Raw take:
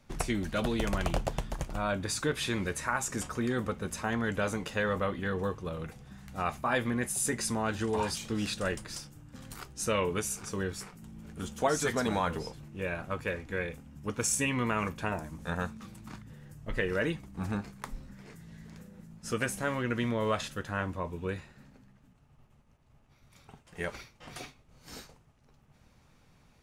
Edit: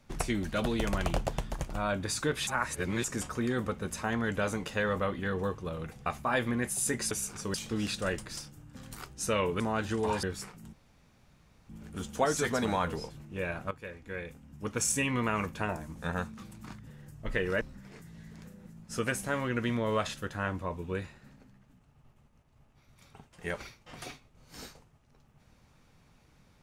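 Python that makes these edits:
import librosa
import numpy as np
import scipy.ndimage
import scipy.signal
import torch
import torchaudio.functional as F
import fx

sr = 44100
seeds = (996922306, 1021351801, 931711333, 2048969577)

y = fx.edit(x, sr, fx.reverse_span(start_s=2.47, length_s=0.57),
    fx.cut(start_s=6.06, length_s=0.39),
    fx.swap(start_s=7.5, length_s=0.63, other_s=10.19, other_length_s=0.43),
    fx.insert_room_tone(at_s=11.12, length_s=0.96),
    fx.fade_in_from(start_s=13.14, length_s=1.11, floor_db=-12.5),
    fx.cut(start_s=17.04, length_s=0.91), tone=tone)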